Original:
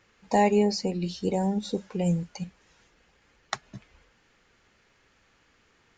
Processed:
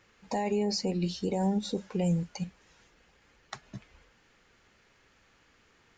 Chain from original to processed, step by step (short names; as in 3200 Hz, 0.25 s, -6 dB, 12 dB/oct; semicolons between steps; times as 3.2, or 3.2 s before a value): limiter -21 dBFS, peak gain reduction 11.5 dB